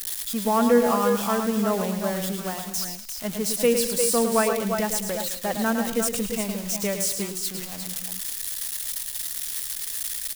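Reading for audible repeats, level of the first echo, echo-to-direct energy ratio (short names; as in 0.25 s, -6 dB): 4, -7.0 dB, -3.5 dB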